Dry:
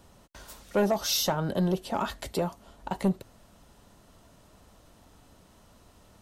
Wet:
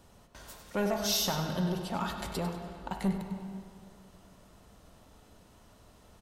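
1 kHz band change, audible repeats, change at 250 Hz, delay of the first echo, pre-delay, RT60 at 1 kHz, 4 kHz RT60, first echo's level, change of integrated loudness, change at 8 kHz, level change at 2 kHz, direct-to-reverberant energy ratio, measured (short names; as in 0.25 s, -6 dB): -3.5 dB, 2, -3.0 dB, 98 ms, 34 ms, 2.2 s, 1.8 s, -10.0 dB, -4.0 dB, -2.0 dB, -1.5 dB, 3.5 dB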